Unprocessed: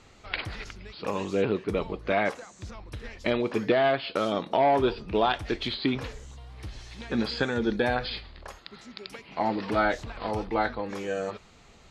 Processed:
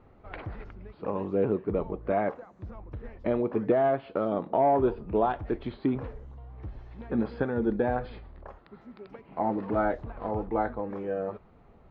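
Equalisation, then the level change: low-pass 1 kHz 12 dB/octave; 0.0 dB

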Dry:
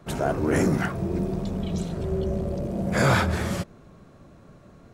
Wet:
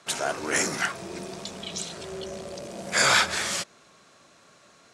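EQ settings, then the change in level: frequency weighting ITU-R 468; 0.0 dB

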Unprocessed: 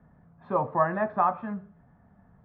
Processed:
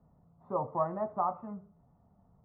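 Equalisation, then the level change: Savitzky-Golay filter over 65 samples; peaking EQ 220 Hz -3 dB 0.77 oct; -5.5 dB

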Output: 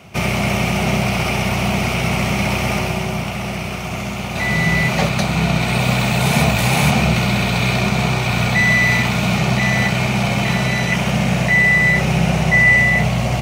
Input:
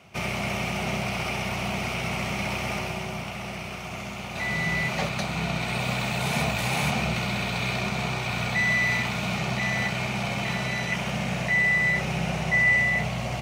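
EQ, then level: bass shelf 440 Hz +5 dB; treble shelf 8.7 kHz +5.5 dB; +8.0 dB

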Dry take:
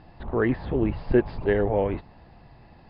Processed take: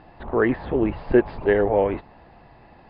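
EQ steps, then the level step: distance through air 220 m; bass shelf 65 Hz -9.5 dB; peaking EQ 130 Hz -7 dB 2.1 oct; +6.5 dB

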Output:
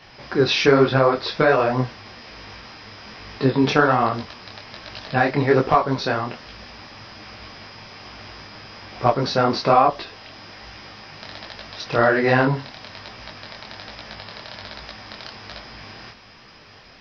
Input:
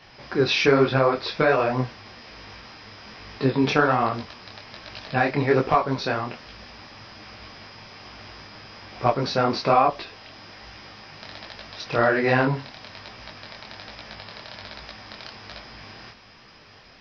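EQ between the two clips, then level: dynamic bell 2.4 kHz, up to -5 dB, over -49 dBFS, Q 6.9; +3.0 dB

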